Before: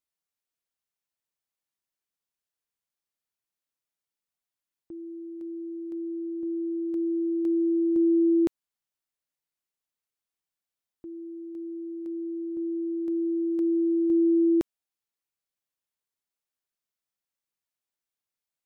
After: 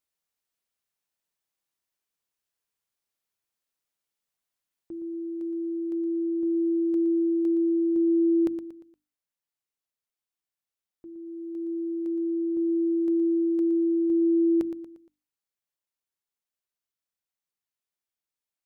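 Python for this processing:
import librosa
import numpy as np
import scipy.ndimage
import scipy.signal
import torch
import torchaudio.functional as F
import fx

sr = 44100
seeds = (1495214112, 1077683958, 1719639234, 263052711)

p1 = fx.hum_notches(x, sr, base_hz=50, count=6)
p2 = p1 + fx.echo_feedback(p1, sr, ms=117, feedback_pct=42, wet_db=-10.5, dry=0)
y = fx.rider(p2, sr, range_db=3, speed_s=0.5)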